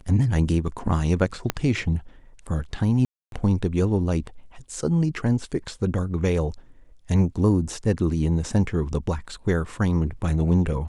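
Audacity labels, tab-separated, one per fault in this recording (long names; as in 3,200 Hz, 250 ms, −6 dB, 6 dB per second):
1.500000	1.500000	click −7 dBFS
3.050000	3.320000	drop-out 272 ms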